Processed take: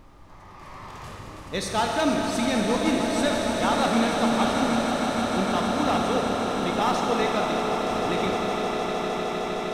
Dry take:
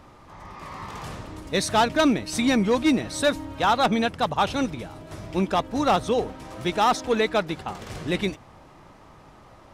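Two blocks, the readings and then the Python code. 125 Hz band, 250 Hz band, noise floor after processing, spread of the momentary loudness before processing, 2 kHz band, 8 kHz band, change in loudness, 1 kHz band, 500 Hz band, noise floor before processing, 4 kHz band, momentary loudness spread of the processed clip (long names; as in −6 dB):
−1.0 dB, +0.5 dB, −45 dBFS, 16 LU, 0.0 dB, +1.0 dB, −0.5 dB, 0.0 dB, +0.5 dB, −50 dBFS, 0.0 dB, 9 LU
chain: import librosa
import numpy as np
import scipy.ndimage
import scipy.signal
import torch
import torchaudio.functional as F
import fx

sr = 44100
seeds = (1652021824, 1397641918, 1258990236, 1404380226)

y = fx.echo_swell(x, sr, ms=154, loudest=8, wet_db=-11)
y = fx.rev_schroeder(y, sr, rt60_s=3.8, comb_ms=27, drr_db=0.5)
y = fx.dmg_noise_colour(y, sr, seeds[0], colour='brown', level_db=-45.0)
y = F.gain(torch.from_numpy(y), -5.5).numpy()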